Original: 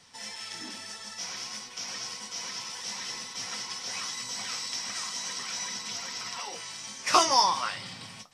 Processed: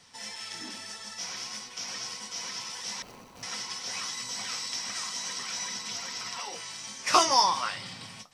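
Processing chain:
0:03.02–0:03.43: running median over 25 samples

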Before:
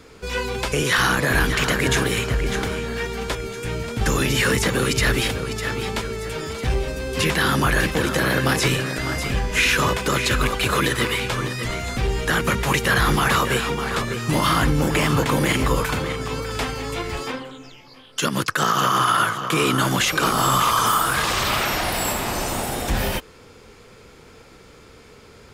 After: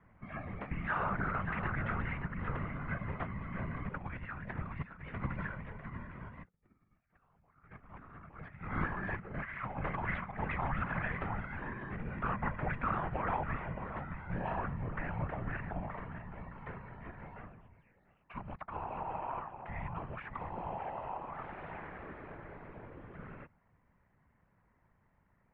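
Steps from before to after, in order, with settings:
sub-octave generator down 2 octaves, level 0 dB
source passing by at 0:06.85, 10 m/s, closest 2.1 metres
compressor whose output falls as the input rises −45 dBFS, ratio −0.5
random phases in short frames
single-sideband voice off tune −340 Hz 160–2,400 Hz
level +7.5 dB

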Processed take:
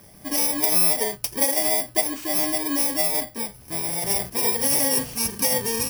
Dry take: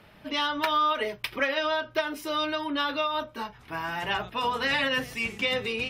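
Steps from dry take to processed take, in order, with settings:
samples in bit-reversed order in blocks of 32 samples
level +5.5 dB

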